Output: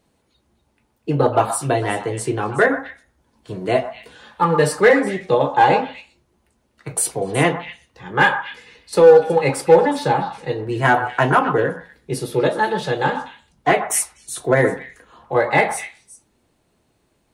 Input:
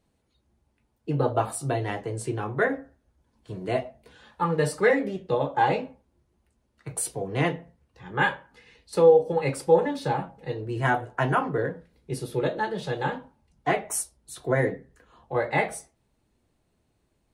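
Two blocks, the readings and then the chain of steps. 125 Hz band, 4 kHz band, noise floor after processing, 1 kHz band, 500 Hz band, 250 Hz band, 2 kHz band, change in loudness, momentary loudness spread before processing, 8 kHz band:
+5.0 dB, +9.5 dB, -66 dBFS, +9.5 dB, +8.0 dB, +7.5 dB, +9.0 dB, +8.0 dB, 15 LU, +9.5 dB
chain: bass shelf 120 Hz -9 dB; in parallel at -11 dB: wavefolder -16.5 dBFS; on the sum: repeats whose band climbs or falls 123 ms, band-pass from 1.1 kHz, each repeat 1.4 oct, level -7 dB; trim +7 dB

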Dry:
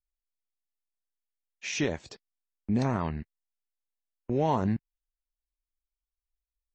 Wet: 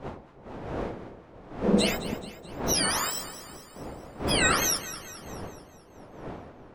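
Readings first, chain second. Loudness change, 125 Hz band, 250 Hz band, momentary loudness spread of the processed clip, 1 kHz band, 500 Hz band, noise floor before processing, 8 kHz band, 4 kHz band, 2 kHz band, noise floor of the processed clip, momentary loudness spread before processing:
+3.5 dB, -2.0 dB, +1.5 dB, 20 LU, +2.5 dB, +3.5 dB, under -85 dBFS, +16.5 dB, +14.5 dB, +10.5 dB, -52 dBFS, 16 LU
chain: spectrum inverted on a logarithmic axis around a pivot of 1.1 kHz; wind noise 590 Hz -43 dBFS; echo whose repeats swap between lows and highs 107 ms, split 920 Hz, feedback 73%, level -11 dB; trim +6.5 dB

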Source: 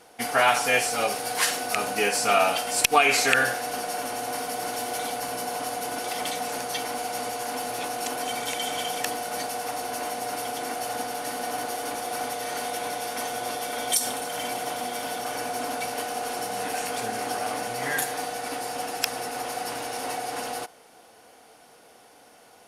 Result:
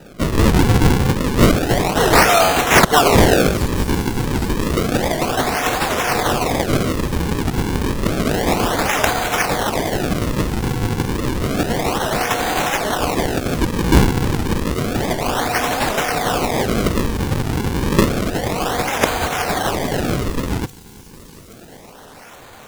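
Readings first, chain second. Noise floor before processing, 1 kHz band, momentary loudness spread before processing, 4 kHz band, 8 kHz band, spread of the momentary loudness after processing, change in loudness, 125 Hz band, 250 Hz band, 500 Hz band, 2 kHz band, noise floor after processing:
-53 dBFS, +7.0 dB, 10 LU, +7.0 dB, +3.5 dB, 9 LU, +9.0 dB, +28.0 dB, +19.5 dB, +10.5 dB, +7.0 dB, -41 dBFS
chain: resonant high shelf 4.6 kHz +8 dB, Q 3; decimation with a swept rate 40×, swing 160% 0.3 Hz; saturation -11 dBFS, distortion -14 dB; on a send: feedback echo behind a high-pass 827 ms, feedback 62%, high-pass 5.4 kHz, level -14.5 dB; on the sum: warped record 78 rpm, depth 250 cents; trim +8 dB

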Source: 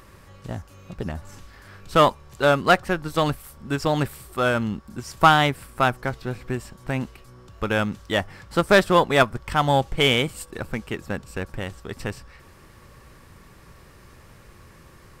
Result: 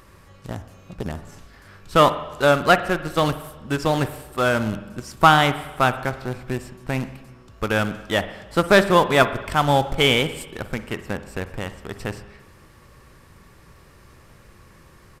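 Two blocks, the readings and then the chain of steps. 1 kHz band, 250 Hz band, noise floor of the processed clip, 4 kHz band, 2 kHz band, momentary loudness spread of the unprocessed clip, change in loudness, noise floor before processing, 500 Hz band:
+1.5 dB, +1.5 dB, -50 dBFS, +1.5 dB, +1.5 dB, 17 LU, +2.0 dB, -50 dBFS, +1.5 dB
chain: in parallel at -10 dB: bit crusher 4-bit; on the sum: spring tank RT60 1.1 s, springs 45/55 ms, chirp 75 ms, DRR 11.5 dB; resampled via 32 kHz; trim -1 dB

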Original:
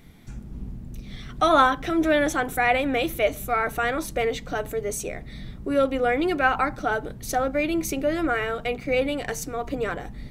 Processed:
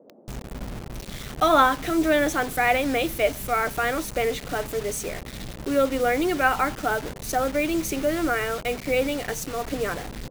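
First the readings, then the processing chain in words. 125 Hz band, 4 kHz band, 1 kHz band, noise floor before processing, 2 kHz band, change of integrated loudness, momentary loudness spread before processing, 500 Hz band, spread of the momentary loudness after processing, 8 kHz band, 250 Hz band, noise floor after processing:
0.0 dB, +1.5 dB, 0.0 dB, -41 dBFS, 0.0 dB, 0.0 dB, 17 LU, 0.0 dB, 15 LU, +2.0 dB, 0.0 dB, -41 dBFS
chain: bit crusher 6-bit; band noise 180–640 Hz -52 dBFS

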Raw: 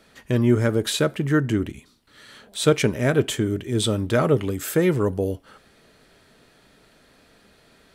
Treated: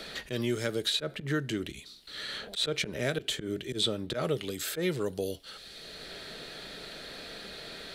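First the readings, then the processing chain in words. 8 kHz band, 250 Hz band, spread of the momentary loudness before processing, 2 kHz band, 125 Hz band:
-8.0 dB, -12.5 dB, 7 LU, -6.5 dB, -14.5 dB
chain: slow attack 112 ms; fifteen-band graphic EQ 100 Hz -11 dB, 250 Hz -7 dB, 1 kHz -7 dB, 4 kHz +11 dB; three bands compressed up and down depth 70%; trim -6 dB

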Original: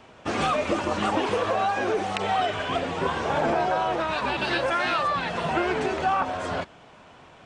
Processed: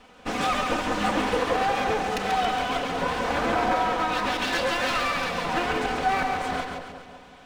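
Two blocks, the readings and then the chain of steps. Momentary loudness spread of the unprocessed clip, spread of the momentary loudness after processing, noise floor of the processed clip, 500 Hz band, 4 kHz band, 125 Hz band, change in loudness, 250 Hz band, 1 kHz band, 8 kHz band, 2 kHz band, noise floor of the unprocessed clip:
4 LU, 5 LU, -49 dBFS, -1.5 dB, +2.0 dB, -2.0 dB, 0.0 dB, 0.0 dB, +0.5 dB, +4.5 dB, +1.5 dB, -51 dBFS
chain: comb filter that takes the minimum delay 4 ms; two-band feedback delay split 860 Hz, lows 188 ms, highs 138 ms, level -5 dB

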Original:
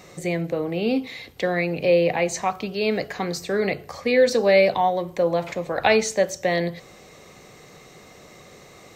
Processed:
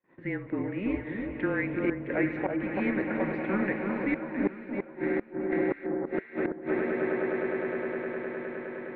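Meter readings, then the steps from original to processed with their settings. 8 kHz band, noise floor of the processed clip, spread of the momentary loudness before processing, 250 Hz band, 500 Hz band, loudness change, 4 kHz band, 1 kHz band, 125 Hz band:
under -40 dB, -49 dBFS, 11 LU, -1.0 dB, -10.0 dB, -8.5 dB, under -25 dB, -12.5 dB, -7.0 dB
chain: mistuned SSB -200 Hz 400–2500 Hz; echo with a slow build-up 103 ms, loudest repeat 8, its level -14.5 dB; inverted gate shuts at -12 dBFS, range -35 dB; on a send: echo whose repeats swap between lows and highs 332 ms, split 1.4 kHz, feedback 51%, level -3.5 dB; on the sum: gate -47 dBFS, range -34 dB; trim -4.5 dB

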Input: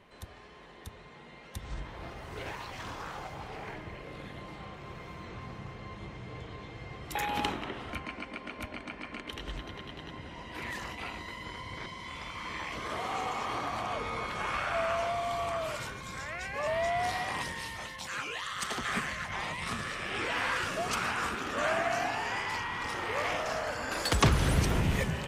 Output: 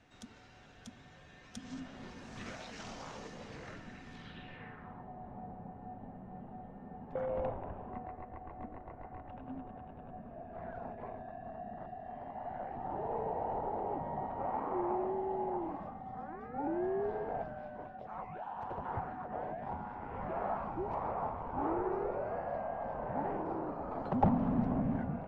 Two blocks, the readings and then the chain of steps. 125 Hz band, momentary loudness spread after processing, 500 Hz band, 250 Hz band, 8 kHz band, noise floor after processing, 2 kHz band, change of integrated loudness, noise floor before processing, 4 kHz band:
-7.0 dB, 15 LU, -2.0 dB, +1.0 dB, under -20 dB, -57 dBFS, -18.0 dB, -5.5 dB, -51 dBFS, under -20 dB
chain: frequency shift -310 Hz; low-pass sweep 6.5 kHz -> 760 Hz, 4.12–5.09 s; trim -6 dB

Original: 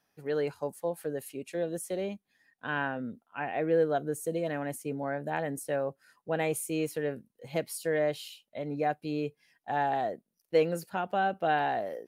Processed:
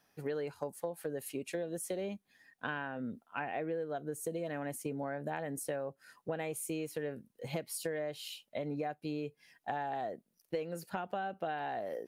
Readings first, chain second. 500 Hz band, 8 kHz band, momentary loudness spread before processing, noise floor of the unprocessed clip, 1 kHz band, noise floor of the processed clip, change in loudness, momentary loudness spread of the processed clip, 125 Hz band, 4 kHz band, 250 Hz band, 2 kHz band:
-7.5 dB, -2.5 dB, 11 LU, -82 dBFS, -8.0 dB, -79 dBFS, -7.5 dB, 5 LU, -5.5 dB, -4.0 dB, -5.5 dB, -7.0 dB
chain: compression 12:1, threshold -38 dBFS, peak gain reduction 18.5 dB; trim +4 dB

